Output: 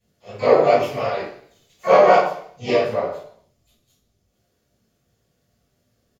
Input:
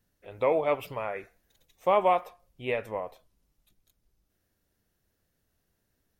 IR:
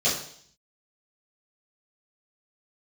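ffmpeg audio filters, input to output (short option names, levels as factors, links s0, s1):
-filter_complex "[0:a]asplit=4[s0][s1][s2][s3];[s1]asetrate=37084,aresample=44100,atempo=1.18921,volume=0.501[s4];[s2]asetrate=52444,aresample=44100,atempo=0.840896,volume=0.398[s5];[s3]asetrate=88200,aresample=44100,atempo=0.5,volume=0.398[s6];[s0][s4][s5][s6]amix=inputs=4:normalize=0,flanger=delay=17:depth=6.6:speed=2.7[s7];[1:a]atrim=start_sample=2205[s8];[s7][s8]afir=irnorm=-1:irlink=0,volume=0.631"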